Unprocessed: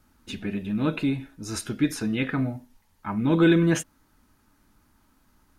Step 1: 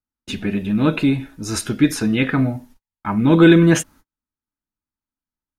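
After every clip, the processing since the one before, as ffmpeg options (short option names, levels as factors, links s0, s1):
-af "agate=range=0.0112:threshold=0.00282:ratio=16:detection=peak,volume=2.51"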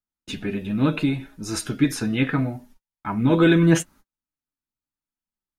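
-af "flanger=delay=4.8:depth=3.5:regen=52:speed=0.75:shape=triangular"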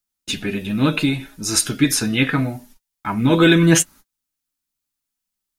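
-af "highshelf=f=2600:g=11.5,volume=1.33"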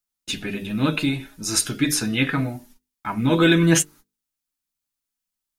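-af "bandreject=f=50:t=h:w=6,bandreject=f=100:t=h:w=6,bandreject=f=150:t=h:w=6,bandreject=f=200:t=h:w=6,bandreject=f=250:t=h:w=6,bandreject=f=300:t=h:w=6,bandreject=f=350:t=h:w=6,bandreject=f=400:t=h:w=6,bandreject=f=450:t=h:w=6,volume=0.708"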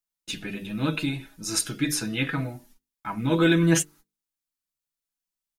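-af "aecho=1:1:6.1:0.32,volume=0.531"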